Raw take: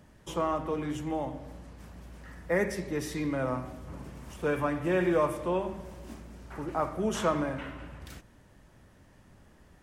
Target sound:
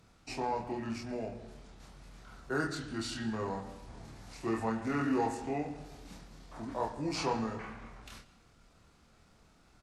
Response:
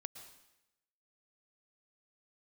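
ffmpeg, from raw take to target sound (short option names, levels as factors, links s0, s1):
-filter_complex "[0:a]equalizer=f=580:w=3.2:g=-4.5,acrossover=split=3500[s0][s1];[s1]acontrast=68[s2];[s0][s2]amix=inputs=2:normalize=0,asetrate=34006,aresample=44100,atempo=1.29684,asplit=2[s3][s4];[s4]adelay=27,volume=0.708[s5];[s3][s5]amix=inputs=2:normalize=0,asplit=2[s6][s7];[s7]highpass=190,lowpass=6500[s8];[1:a]atrim=start_sample=2205[s9];[s8][s9]afir=irnorm=-1:irlink=0,volume=0.891[s10];[s6][s10]amix=inputs=2:normalize=0,volume=0.398"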